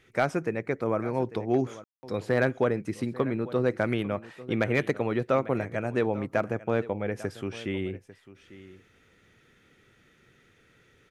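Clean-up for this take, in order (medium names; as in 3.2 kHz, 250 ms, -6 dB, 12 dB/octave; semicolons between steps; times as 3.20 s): clip repair -13.5 dBFS; room tone fill 1.84–2.03 s; inverse comb 846 ms -17.5 dB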